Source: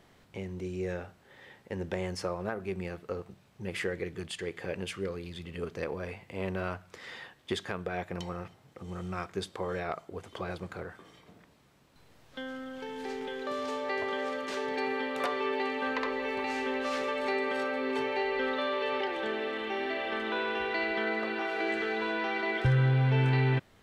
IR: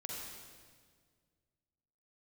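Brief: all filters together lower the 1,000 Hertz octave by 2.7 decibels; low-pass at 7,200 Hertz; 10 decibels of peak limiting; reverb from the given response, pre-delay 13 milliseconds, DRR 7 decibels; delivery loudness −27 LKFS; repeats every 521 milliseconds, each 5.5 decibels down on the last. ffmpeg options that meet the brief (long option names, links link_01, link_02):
-filter_complex "[0:a]lowpass=7200,equalizer=frequency=1000:width_type=o:gain=-3.5,alimiter=level_in=1dB:limit=-24dB:level=0:latency=1,volume=-1dB,aecho=1:1:521|1042|1563|2084|2605|3126|3647:0.531|0.281|0.149|0.079|0.0419|0.0222|0.0118,asplit=2[link_01][link_02];[1:a]atrim=start_sample=2205,adelay=13[link_03];[link_02][link_03]afir=irnorm=-1:irlink=0,volume=-6.5dB[link_04];[link_01][link_04]amix=inputs=2:normalize=0,volume=7dB"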